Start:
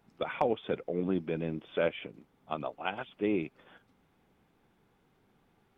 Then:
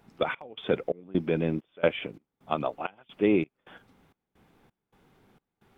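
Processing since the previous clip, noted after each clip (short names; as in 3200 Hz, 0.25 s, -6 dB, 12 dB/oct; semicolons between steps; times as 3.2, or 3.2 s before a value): step gate "xxx..xxx..x" 131 bpm -24 dB; gain +7 dB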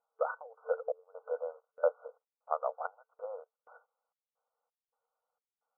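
FFT band-pass 450–1500 Hz; gate -59 dBFS, range -16 dB; gain -3.5 dB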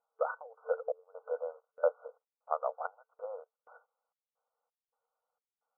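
nothing audible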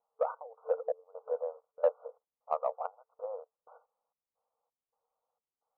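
steep low-pass 1200 Hz 48 dB/oct; in parallel at -11 dB: soft clip -26 dBFS, distortion -11 dB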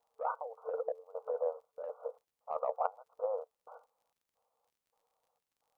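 negative-ratio compressor -34 dBFS, ratio -1; crackle 39/s -64 dBFS; gain +1 dB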